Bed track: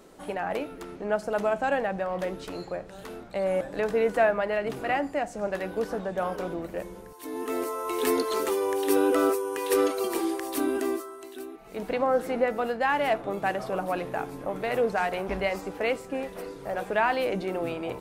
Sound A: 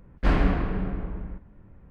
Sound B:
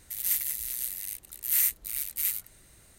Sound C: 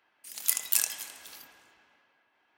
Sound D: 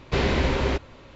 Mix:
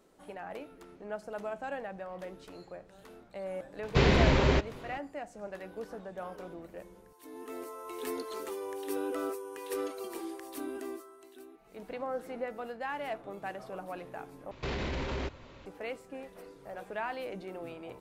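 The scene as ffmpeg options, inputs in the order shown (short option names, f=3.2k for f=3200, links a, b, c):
-filter_complex "[4:a]asplit=2[a][b];[0:a]volume=-12dB[c];[a]equalizer=f=150:w=3.7:g=5.5[d];[b]alimiter=limit=-22.5dB:level=0:latency=1:release=22[e];[c]asplit=2[f][g];[f]atrim=end=14.514[h];[e]atrim=end=1.15,asetpts=PTS-STARTPTS,volume=-4.5dB[i];[g]atrim=start=15.656[j];[d]atrim=end=1.15,asetpts=PTS-STARTPTS,volume=-1.5dB,afade=t=in:d=0.004:c=hsin,afade=t=out:st=1.146:d=0.004:c=hsin,adelay=3830[k];[h][i]acrossfade=d=0.004:c1=hsin:c2=hsin[l];[l][j]acrossfade=d=0.004:c1=hsin:c2=hsin[m];[m][k]amix=inputs=2:normalize=0"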